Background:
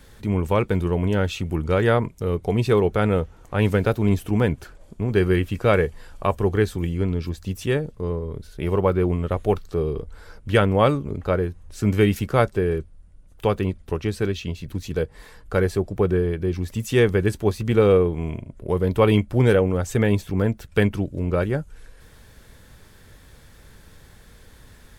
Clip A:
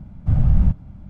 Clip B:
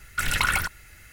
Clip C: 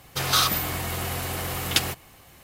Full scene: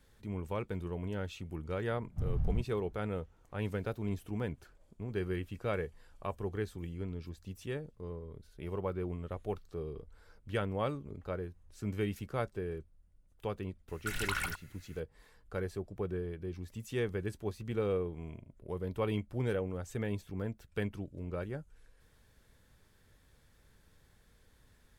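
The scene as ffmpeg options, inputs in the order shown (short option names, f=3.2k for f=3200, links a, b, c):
-filter_complex "[0:a]volume=-16.5dB[a];[1:a]atrim=end=1.09,asetpts=PTS-STARTPTS,volume=-17dB,afade=t=in:d=0.004:c=hsin,afade=t=out:st=1.086:d=0.004:c=hsin,adelay=1900[b];[2:a]atrim=end=1.12,asetpts=PTS-STARTPTS,volume=-12dB,afade=t=in:d=0.004:c=hsin,afade=t=out:st=1.116:d=0.004:c=hsin,adelay=13880[c];[a][b][c]amix=inputs=3:normalize=0"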